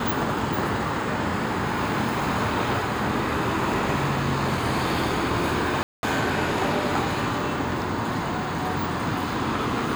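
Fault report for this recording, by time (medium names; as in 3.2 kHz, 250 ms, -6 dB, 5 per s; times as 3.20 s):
5.83–6.03 s: dropout 201 ms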